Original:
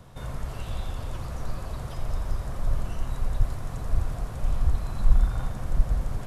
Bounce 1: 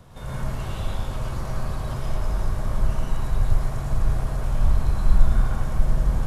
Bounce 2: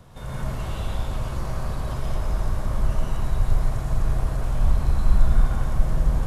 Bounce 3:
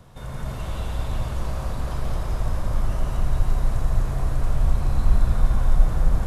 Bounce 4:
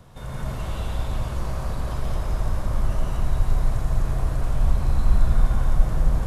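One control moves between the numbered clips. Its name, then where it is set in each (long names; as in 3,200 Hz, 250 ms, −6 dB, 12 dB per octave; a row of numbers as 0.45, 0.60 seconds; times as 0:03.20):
dense smooth reverb, RT60: 0.53, 1.1, 5.2, 2.5 seconds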